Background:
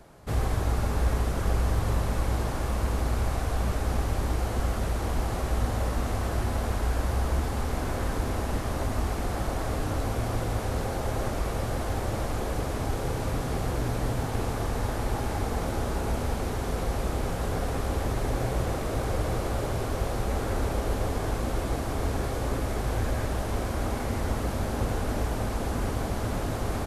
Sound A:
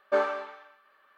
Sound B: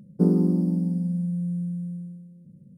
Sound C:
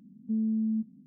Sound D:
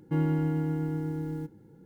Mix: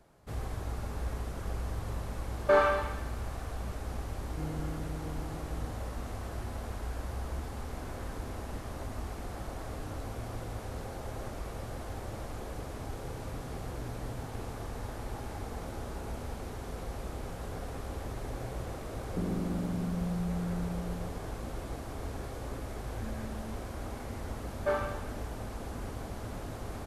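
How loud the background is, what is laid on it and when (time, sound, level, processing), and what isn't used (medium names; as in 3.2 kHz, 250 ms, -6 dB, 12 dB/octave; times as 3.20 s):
background -10.5 dB
2.37 s: add A -12.5 dB + loudness maximiser +18 dB
4.26 s: add D -12.5 dB + resampled via 32 kHz
18.97 s: add B -7 dB + compression, threshold -23 dBFS
22.72 s: add C -14 dB + band-pass filter 430 Hz, Q 0.7
24.54 s: add A -5.5 dB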